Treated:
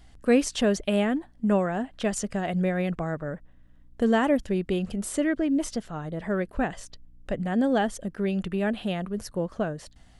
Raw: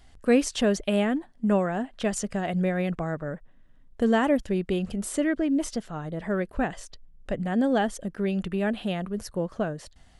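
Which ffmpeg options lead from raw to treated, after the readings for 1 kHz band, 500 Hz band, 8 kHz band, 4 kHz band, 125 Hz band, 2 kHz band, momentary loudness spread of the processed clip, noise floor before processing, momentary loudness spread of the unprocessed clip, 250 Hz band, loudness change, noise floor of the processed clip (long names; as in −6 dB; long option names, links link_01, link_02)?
0.0 dB, 0.0 dB, 0.0 dB, 0.0 dB, 0.0 dB, 0.0 dB, 9 LU, −54 dBFS, 9 LU, 0.0 dB, 0.0 dB, −53 dBFS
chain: -af "aeval=exprs='val(0)+0.00112*(sin(2*PI*60*n/s)+sin(2*PI*2*60*n/s)/2+sin(2*PI*3*60*n/s)/3+sin(2*PI*4*60*n/s)/4+sin(2*PI*5*60*n/s)/5)':channel_layout=same"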